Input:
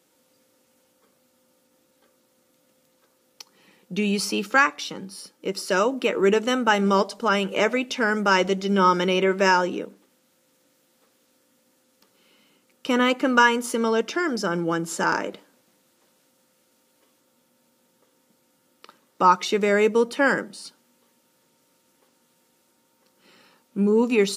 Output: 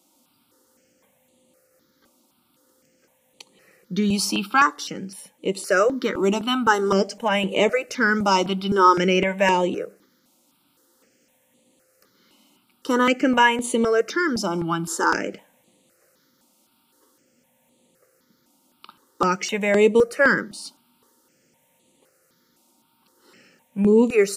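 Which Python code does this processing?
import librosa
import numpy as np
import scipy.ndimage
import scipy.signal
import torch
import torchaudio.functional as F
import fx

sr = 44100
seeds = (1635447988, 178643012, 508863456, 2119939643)

y = fx.phaser_held(x, sr, hz=3.9, low_hz=460.0, high_hz=5300.0)
y = F.gain(torch.from_numpy(y), 4.5).numpy()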